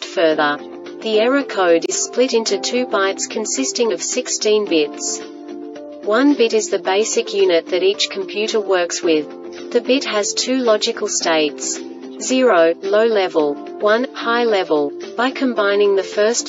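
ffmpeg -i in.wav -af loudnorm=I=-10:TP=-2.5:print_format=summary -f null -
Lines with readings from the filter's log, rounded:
Input Integrated:    -17.2 LUFS
Input True Peak:      -1.3 dBTP
Input LRA:             1.3 LU
Input Threshold:     -27.4 LUFS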